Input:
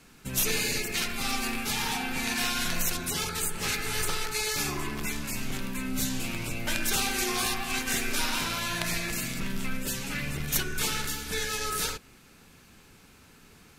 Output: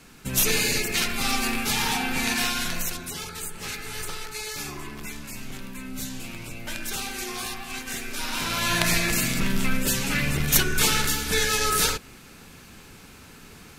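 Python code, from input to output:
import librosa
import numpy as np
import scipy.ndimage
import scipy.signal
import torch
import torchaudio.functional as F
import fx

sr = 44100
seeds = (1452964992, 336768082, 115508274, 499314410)

y = fx.gain(x, sr, db=fx.line((2.28, 5.0), (3.17, -4.0), (8.15, -4.0), (8.72, 8.0)))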